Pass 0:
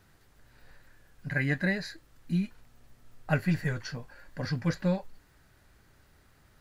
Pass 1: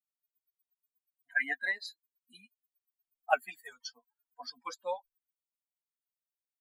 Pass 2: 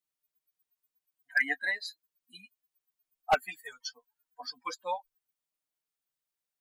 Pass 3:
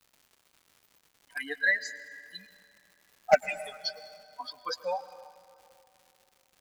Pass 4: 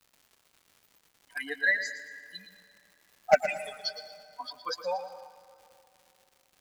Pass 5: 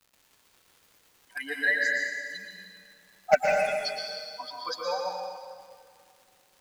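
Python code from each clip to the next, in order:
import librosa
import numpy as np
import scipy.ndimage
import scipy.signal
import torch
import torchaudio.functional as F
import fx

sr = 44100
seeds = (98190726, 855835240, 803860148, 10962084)

y1 = fx.bin_expand(x, sr, power=3.0)
y1 = scipy.signal.sosfilt(scipy.signal.ellip(4, 1.0, 40, 250.0, 'highpass', fs=sr, output='sos'), y1)
y1 = fx.low_shelf_res(y1, sr, hz=530.0, db=-12.0, q=3.0)
y1 = y1 * librosa.db_to_amplitude(4.5)
y2 = y1 + 0.53 * np.pad(y1, (int(6.5 * sr / 1000.0), 0))[:len(y1)]
y2 = np.clip(y2, -10.0 ** (-20.5 / 20.0), 10.0 ** (-20.5 / 20.0))
y2 = y2 * librosa.db_to_amplitude(3.0)
y3 = fx.spec_ripple(y2, sr, per_octave=0.61, drift_hz=1.3, depth_db=21)
y3 = fx.dmg_crackle(y3, sr, seeds[0], per_s=230.0, level_db=-46.0)
y3 = fx.rev_plate(y3, sr, seeds[1], rt60_s=2.7, hf_ratio=0.6, predelay_ms=95, drr_db=14.5)
y3 = y3 * librosa.db_to_amplitude(-1.5)
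y4 = fx.echo_feedback(y3, sr, ms=115, feedback_pct=38, wet_db=-12.0)
y5 = fx.rev_plate(y4, sr, seeds[2], rt60_s=1.6, hf_ratio=1.0, predelay_ms=105, drr_db=-0.5)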